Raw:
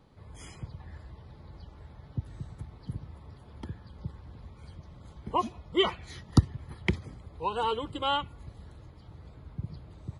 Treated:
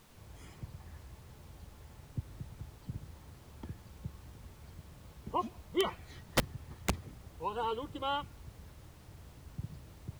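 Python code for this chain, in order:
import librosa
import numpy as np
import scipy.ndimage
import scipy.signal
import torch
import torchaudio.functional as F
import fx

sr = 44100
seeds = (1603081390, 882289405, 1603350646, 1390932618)

y = fx.rattle_buzz(x, sr, strikes_db=-19.0, level_db=-15.0)
y = fx.high_shelf(y, sr, hz=3100.0, db=-7.5)
y = (np.mod(10.0 ** (14.0 / 20.0) * y + 1.0, 2.0) - 1.0) / 10.0 ** (14.0 / 20.0)
y = fx.dmg_noise_colour(y, sr, seeds[0], colour='pink', level_db=-56.0)
y = F.gain(torch.from_numpy(y), -5.0).numpy()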